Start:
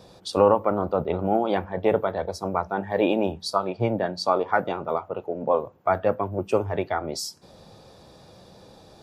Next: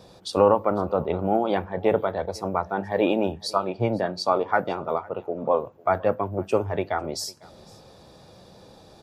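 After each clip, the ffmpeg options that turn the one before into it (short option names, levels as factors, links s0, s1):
-af "aecho=1:1:501:0.0631"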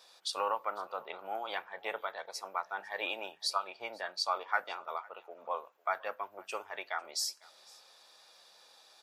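-af "highpass=1400,volume=0.794"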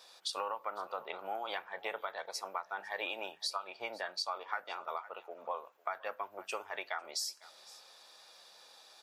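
-af "acompressor=threshold=0.0158:ratio=5,volume=1.26"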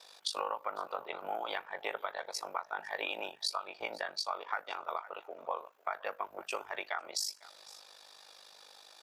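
-af "aeval=exprs='val(0)*sin(2*PI*25*n/s)':c=same,volume=1.68"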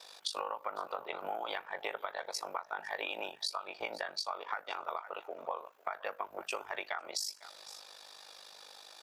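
-af "acompressor=threshold=0.0126:ratio=2.5,volume=1.41"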